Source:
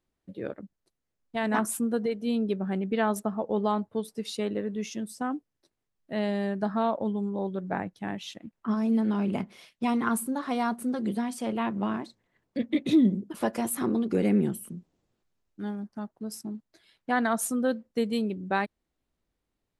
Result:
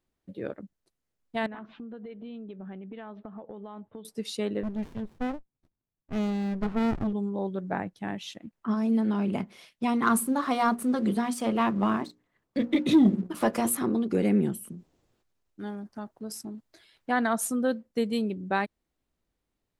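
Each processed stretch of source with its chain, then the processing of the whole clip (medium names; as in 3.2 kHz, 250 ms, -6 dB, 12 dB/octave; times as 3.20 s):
1.46–4.05 s: steep low-pass 3.7 kHz 48 dB/octave + compression 10:1, threshold -38 dBFS
4.63–7.13 s: low-pass 4.7 kHz + sliding maximum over 65 samples
10.02–13.77 s: peaking EQ 1.2 kHz +5.5 dB 0.29 oct + hum notches 60/120/180/240/300/360/420/480/540 Hz + waveshaping leveller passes 1
14.72–17.10 s: peaking EQ 190 Hz -4.5 dB 0.72 oct + transient shaper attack +1 dB, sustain +6 dB
whole clip: none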